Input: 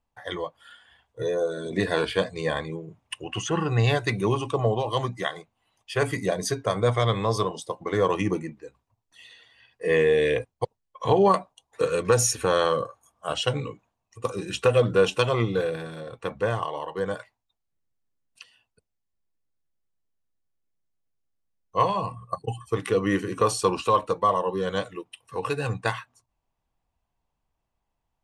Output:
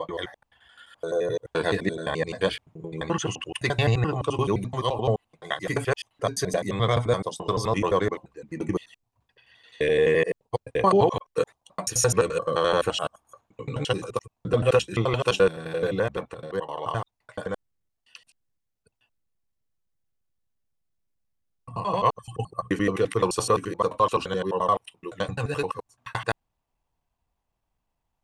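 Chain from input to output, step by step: slices in reverse order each 86 ms, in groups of 6

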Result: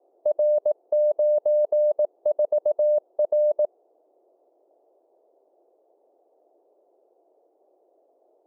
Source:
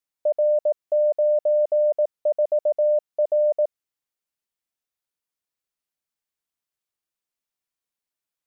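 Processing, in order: level quantiser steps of 21 dB; band noise 340–720 Hz -65 dBFS; gain +1.5 dB

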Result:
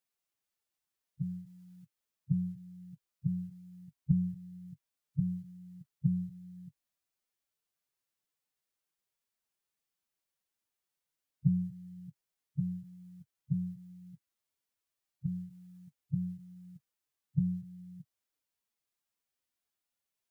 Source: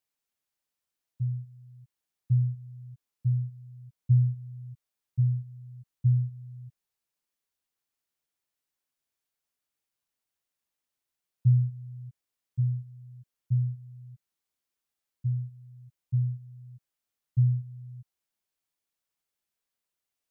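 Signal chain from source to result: formant-preserving pitch shift +6.5 st

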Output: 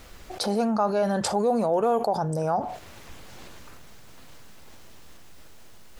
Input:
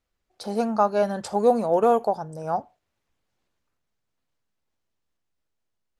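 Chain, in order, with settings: fast leveller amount 70%; gain -6.5 dB

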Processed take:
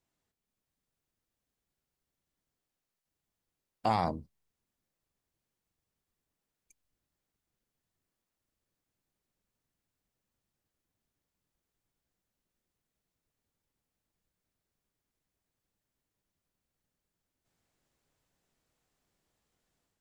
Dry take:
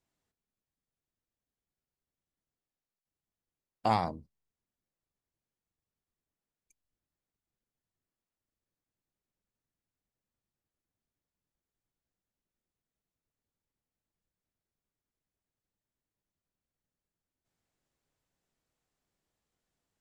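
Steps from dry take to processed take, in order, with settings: AGC gain up to 5 dB; limiter -16.5 dBFS, peak gain reduction 8 dB

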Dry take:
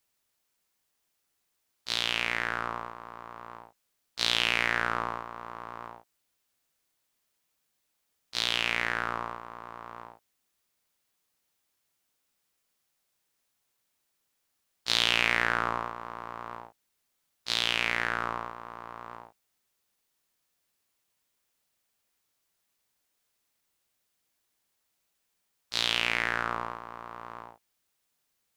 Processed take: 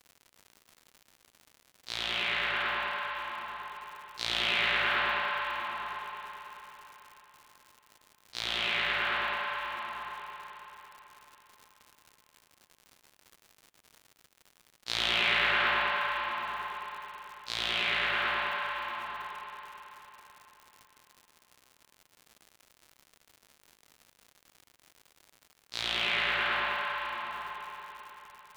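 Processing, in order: spring tank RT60 4 s, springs 36/54 ms, chirp 55 ms, DRR -7.5 dB; crackle 150/s -35 dBFS; gain -7 dB

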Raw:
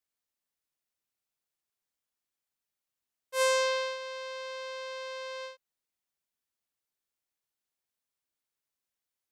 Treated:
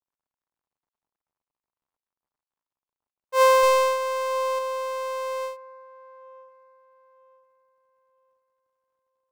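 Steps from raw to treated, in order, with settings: median filter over 41 samples; bell 1000 Hz +11 dB 1 oct; 3.63–4.59 sample leveller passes 1; on a send: band-limited delay 0.95 s, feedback 30%, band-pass 970 Hz, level -18.5 dB; on the sum: gain +8.5 dB

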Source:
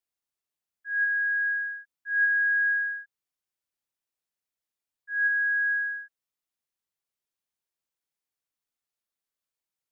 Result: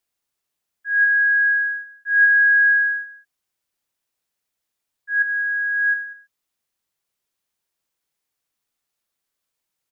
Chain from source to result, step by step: 5.22–5.94 negative-ratio compressor -31 dBFS, ratio -1; echo 0.192 s -17 dB; gain +9 dB

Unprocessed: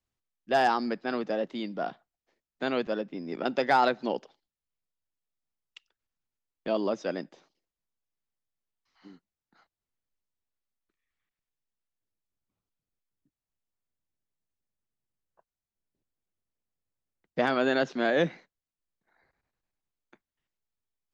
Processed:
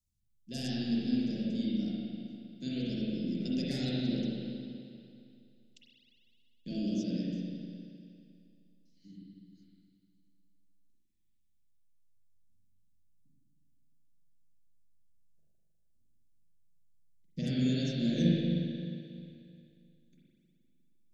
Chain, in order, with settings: Chebyshev band-stop 160–6200 Hz, order 2; bell 380 Hz -4.5 dB 0.28 oct; spring tank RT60 2.5 s, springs 39/51 ms, chirp 30 ms, DRR -8 dB; gain +2.5 dB

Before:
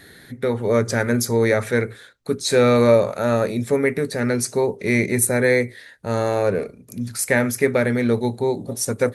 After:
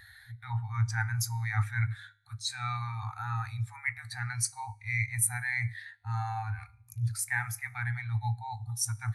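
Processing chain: reverse; compressor 6:1, threshold -26 dBFS, peak gain reduction 15 dB; reverse; FFT band-reject 120–730 Hz; resonator 52 Hz, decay 0.96 s, harmonics all, mix 50%; spectral expander 1.5:1; gain +7 dB

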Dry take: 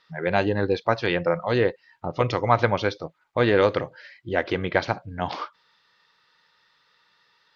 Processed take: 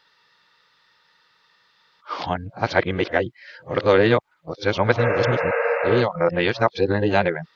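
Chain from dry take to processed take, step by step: whole clip reversed; spectral repair 5.01–5.99, 470–2800 Hz after; gain +3 dB

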